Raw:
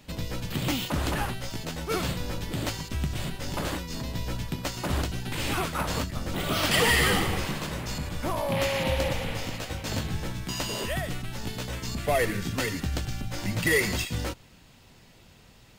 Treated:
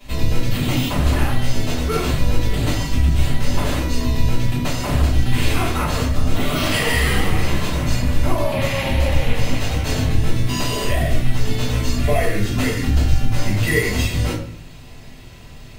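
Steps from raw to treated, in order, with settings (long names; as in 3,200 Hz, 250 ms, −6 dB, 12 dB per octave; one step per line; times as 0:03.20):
downward compressor 3 to 1, threshold −31 dBFS, peak gain reduction 9.5 dB
rectangular room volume 59 cubic metres, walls mixed, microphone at 3.1 metres
level −2 dB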